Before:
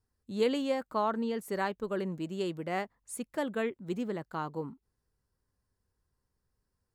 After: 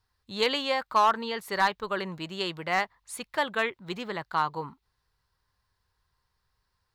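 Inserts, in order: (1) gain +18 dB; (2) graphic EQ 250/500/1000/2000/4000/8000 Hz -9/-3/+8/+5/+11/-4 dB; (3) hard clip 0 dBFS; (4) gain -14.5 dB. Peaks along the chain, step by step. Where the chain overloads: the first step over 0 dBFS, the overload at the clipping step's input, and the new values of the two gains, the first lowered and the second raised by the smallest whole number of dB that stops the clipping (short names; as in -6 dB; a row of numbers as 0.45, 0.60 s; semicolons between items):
+1.5, +6.0, 0.0, -14.5 dBFS; step 1, 6.0 dB; step 1 +12 dB, step 4 -8.5 dB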